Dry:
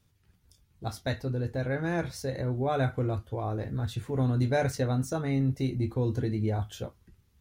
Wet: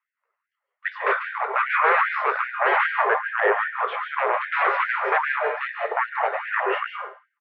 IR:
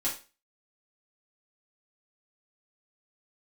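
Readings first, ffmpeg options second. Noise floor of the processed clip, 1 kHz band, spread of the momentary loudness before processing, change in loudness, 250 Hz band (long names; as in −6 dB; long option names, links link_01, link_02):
−85 dBFS, +16.5 dB, 7 LU, +7.5 dB, below −10 dB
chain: -filter_complex "[0:a]highpass=frequency=280:width=0.5412,highpass=frequency=280:width=1.3066,agate=range=-26dB:threshold=-55dB:ratio=16:detection=peak,aecho=1:1:1.3:0.33,aeval=exprs='0.168*sin(PI/2*8.91*val(0)/0.168)':channel_layout=same,highpass=frequency=460:width_type=q:width=0.5412,highpass=frequency=460:width_type=q:width=1.307,lowpass=frequency=2400:width_type=q:width=0.5176,lowpass=frequency=2400:width_type=q:width=0.7071,lowpass=frequency=2400:width_type=q:width=1.932,afreqshift=-350,aecho=1:1:111:0.126,asplit=2[link_01][link_02];[1:a]atrim=start_sample=2205,asetrate=32634,aresample=44100,adelay=137[link_03];[link_02][link_03]afir=irnorm=-1:irlink=0,volume=-12.5dB[link_04];[link_01][link_04]amix=inputs=2:normalize=0,afftfilt=real='re*gte(b*sr/1024,360*pow(1500/360,0.5+0.5*sin(2*PI*2.5*pts/sr)))':imag='im*gte(b*sr/1024,360*pow(1500/360,0.5+0.5*sin(2*PI*2.5*pts/sr)))':win_size=1024:overlap=0.75,volume=3.5dB"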